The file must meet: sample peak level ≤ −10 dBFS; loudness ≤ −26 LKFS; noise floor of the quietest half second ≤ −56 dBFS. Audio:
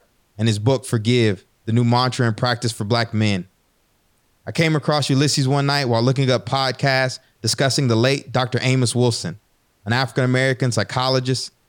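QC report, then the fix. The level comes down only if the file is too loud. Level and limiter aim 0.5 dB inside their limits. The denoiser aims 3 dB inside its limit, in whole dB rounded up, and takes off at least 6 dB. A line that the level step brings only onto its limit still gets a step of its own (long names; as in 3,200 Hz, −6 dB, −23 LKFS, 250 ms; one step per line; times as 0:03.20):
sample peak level −5.0 dBFS: out of spec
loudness −19.5 LKFS: out of spec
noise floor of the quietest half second −63 dBFS: in spec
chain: level −7 dB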